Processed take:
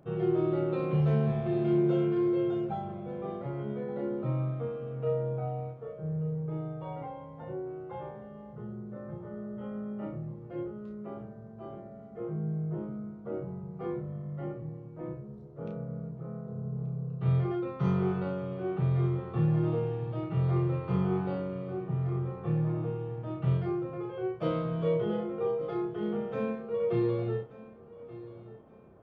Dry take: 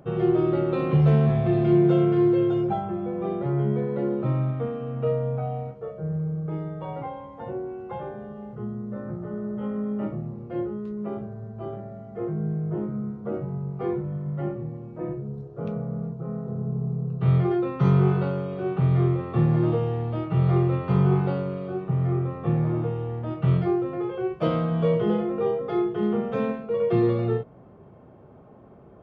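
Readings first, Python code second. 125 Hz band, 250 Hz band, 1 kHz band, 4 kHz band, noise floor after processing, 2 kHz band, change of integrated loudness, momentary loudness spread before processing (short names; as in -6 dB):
-7.0 dB, -7.0 dB, -7.5 dB, n/a, -48 dBFS, -7.0 dB, -7.0 dB, 14 LU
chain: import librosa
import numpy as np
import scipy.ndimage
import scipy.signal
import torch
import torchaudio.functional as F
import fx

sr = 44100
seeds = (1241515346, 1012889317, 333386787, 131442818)

y = fx.doubler(x, sr, ms=32.0, db=-5.0)
y = fx.echo_feedback(y, sr, ms=1180, feedback_pct=32, wet_db=-17.5)
y = y * 10.0 ** (-8.5 / 20.0)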